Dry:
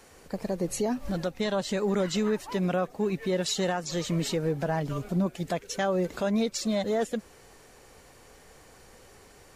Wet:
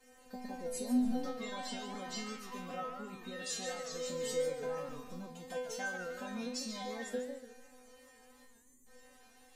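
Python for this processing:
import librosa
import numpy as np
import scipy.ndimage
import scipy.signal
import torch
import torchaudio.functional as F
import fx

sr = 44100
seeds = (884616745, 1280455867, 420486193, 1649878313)

y = fx.spec_erase(x, sr, start_s=8.44, length_s=0.42, low_hz=470.0, high_hz=6200.0)
y = fx.stiff_resonator(y, sr, f0_hz=250.0, decay_s=0.7, stiffness=0.002)
y = fx.echo_warbled(y, sr, ms=145, feedback_pct=35, rate_hz=2.8, cents=196, wet_db=-9.0)
y = y * 10.0 ** (9.5 / 20.0)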